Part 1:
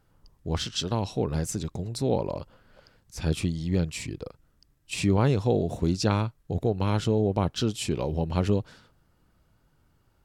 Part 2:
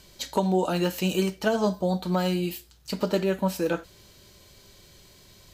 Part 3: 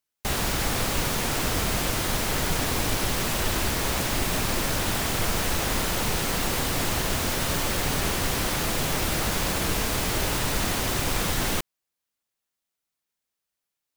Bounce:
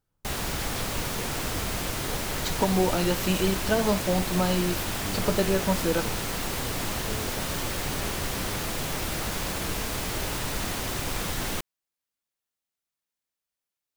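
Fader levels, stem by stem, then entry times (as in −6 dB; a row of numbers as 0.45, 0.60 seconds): −15.0, −0.5, −4.5 decibels; 0.00, 2.25, 0.00 seconds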